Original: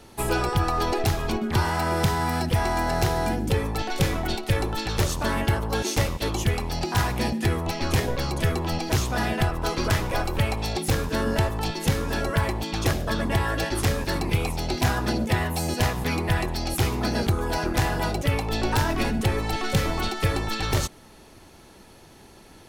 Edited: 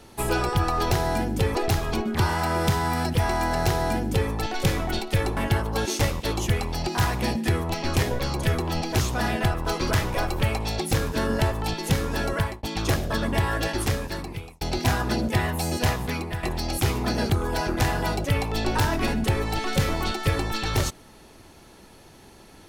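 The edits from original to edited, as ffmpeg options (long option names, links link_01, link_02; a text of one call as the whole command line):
ffmpeg -i in.wav -filter_complex "[0:a]asplit=7[link_01][link_02][link_03][link_04][link_05][link_06][link_07];[link_01]atrim=end=0.912[link_08];[link_02]atrim=start=3.018:end=3.662[link_09];[link_03]atrim=start=0.908:end=4.732[link_10];[link_04]atrim=start=5.338:end=12.6,asetpts=PTS-STARTPTS,afade=type=out:start_time=6.992:duration=0.27[link_11];[link_05]atrim=start=12.6:end=14.58,asetpts=PTS-STARTPTS,afade=type=in:duration=0.004:curve=hsin,afade=type=out:start_time=1.12:duration=0.86[link_12];[link_06]atrim=start=14.58:end=16.4,asetpts=PTS-STARTPTS,afade=type=in:duration=0.004:curve=hsin,afade=type=out:start_time=1.33:duration=0.49:silence=0.298538[link_13];[link_07]atrim=start=16.4,asetpts=PTS-STARTPTS,afade=type=in:duration=0.004:curve=hsin:silence=0.298538[link_14];[link_08][link_09]acrossfade=duration=0.004:curve1=hsin:curve2=hsin[link_15];[link_15][link_10]acrossfade=duration=0.004:curve1=hsin:curve2=hsin[link_16];[link_11][link_12][link_13][link_14]concat=n=4:v=0:a=1[link_17];[link_16][link_17]acrossfade=duration=0.004:curve1=hsin:curve2=hsin" out.wav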